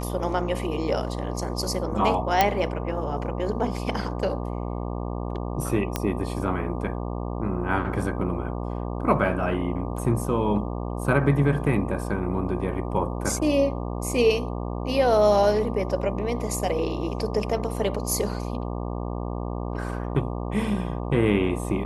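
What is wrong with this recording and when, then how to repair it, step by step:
mains buzz 60 Hz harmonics 20 −30 dBFS
0:02.41: click −4 dBFS
0:05.96: click −9 dBFS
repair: click removal
hum removal 60 Hz, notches 20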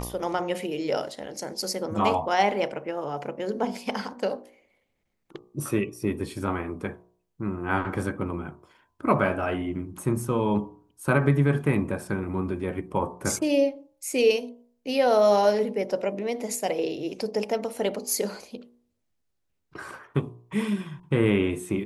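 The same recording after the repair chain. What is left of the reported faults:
none of them is left

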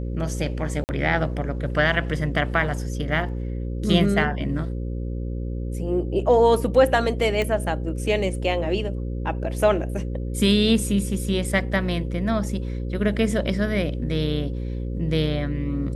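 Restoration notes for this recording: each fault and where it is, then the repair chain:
mains buzz 60 Hz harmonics 9 −28 dBFS
0:00.84–0:00.89: drop-out 49 ms
0:07.42: click −13 dBFS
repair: click removal
hum removal 60 Hz, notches 9
repair the gap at 0:00.84, 49 ms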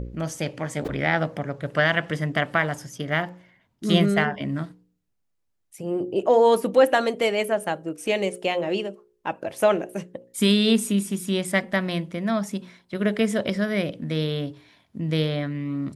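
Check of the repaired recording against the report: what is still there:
none of them is left

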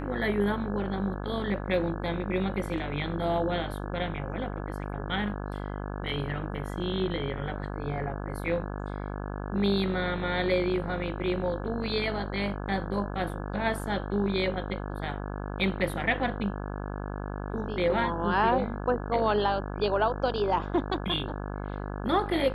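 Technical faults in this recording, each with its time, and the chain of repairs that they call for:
mains buzz 50 Hz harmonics 34 −35 dBFS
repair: hum removal 50 Hz, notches 34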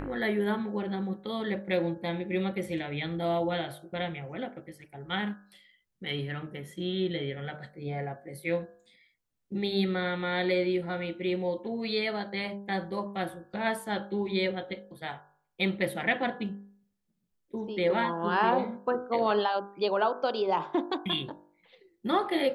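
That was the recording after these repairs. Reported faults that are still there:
none of them is left

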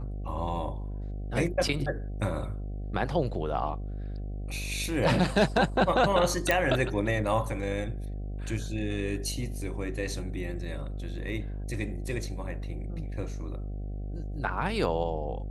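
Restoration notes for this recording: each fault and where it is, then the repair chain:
mains buzz 50 Hz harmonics 15 −35 dBFS
0:06.51: click −10 dBFS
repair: click removal
hum removal 50 Hz, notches 15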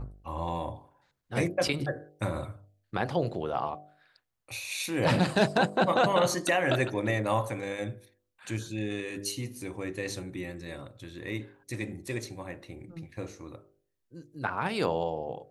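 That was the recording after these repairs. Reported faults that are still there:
none of them is left

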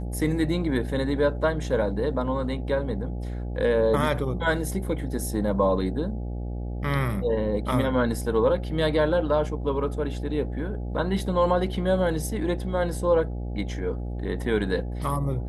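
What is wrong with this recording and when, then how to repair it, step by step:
mains buzz 60 Hz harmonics 14 −31 dBFS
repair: hum removal 60 Hz, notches 14

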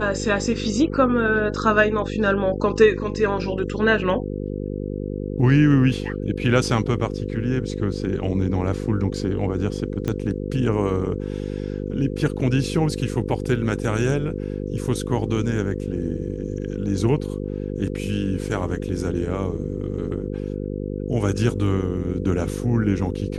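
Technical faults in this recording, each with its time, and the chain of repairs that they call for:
mains buzz 50 Hz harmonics 10 −28 dBFS
0:10.08: click −12 dBFS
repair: click removal
hum removal 50 Hz, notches 10

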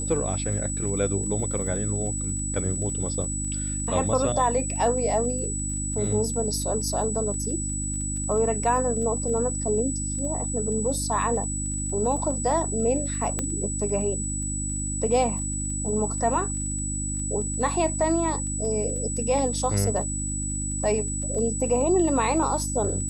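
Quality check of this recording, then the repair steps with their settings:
surface crackle 24 per second −35 dBFS
mains hum 50 Hz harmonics 6 −31 dBFS
whistle 7,900 Hz −30 dBFS
0:13.39: click −13 dBFS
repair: click removal
hum removal 50 Hz, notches 6
notch filter 7,900 Hz, Q 30

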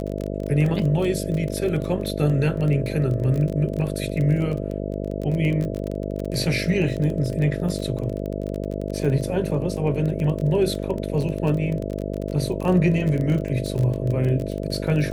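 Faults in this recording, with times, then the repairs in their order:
mains buzz 50 Hz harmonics 13 −28 dBFS
surface crackle 24 per second −26 dBFS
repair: click removal
hum removal 50 Hz, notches 13

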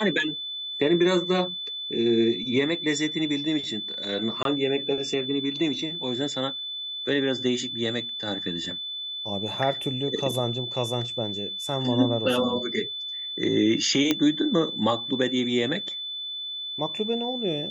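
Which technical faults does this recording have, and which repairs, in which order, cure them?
whistle 3,500 Hz −31 dBFS
0:04.43–0:04.45: drop-out 22 ms
0:14.11: click −7 dBFS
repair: click removal
notch filter 3,500 Hz, Q 30
repair the gap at 0:04.43, 22 ms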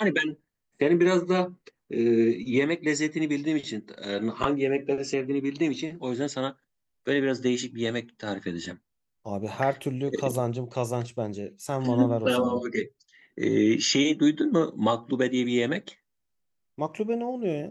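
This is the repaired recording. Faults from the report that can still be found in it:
none of them is left

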